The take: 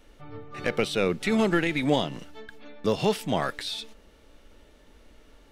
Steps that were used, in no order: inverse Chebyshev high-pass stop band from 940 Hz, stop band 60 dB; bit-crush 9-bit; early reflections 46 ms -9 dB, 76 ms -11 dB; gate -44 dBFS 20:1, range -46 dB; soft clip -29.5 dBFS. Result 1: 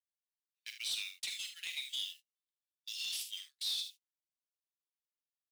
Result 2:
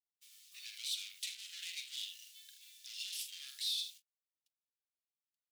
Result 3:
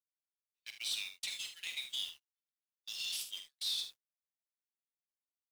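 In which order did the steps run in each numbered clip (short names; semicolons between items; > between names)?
bit-crush > inverse Chebyshev high-pass > gate > early reflections > soft clip; early reflections > bit-crush > gate > soft clip > inverse Chebyshev high-pass; inverse Chebyshev high-pass > bit-crush > soft clip > gate > early reflections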